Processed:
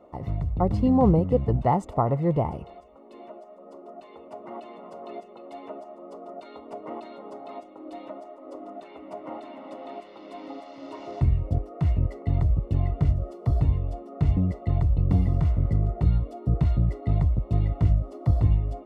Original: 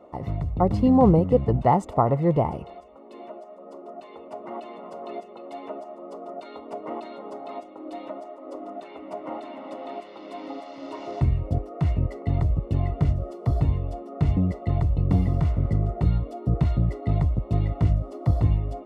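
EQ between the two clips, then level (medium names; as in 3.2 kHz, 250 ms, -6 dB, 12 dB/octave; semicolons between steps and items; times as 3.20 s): bass shelf 100 Hz +6.5 dB; -3.5 dB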